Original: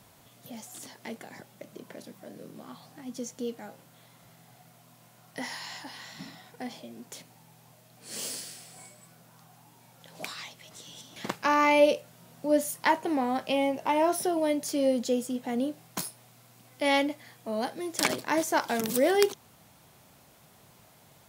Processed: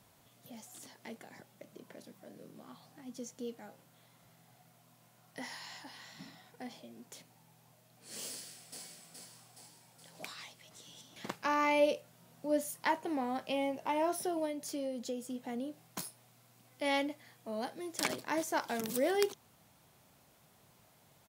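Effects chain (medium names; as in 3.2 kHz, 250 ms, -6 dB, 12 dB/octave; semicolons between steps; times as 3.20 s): 8.30–8.83 s: echo throw 420 ms, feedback 60%, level -2.5 dB; 14.45–15.83 s: compression 4:1, threshold -28 dBFS, peak gain reduction 7 dB; trim -7.5 dB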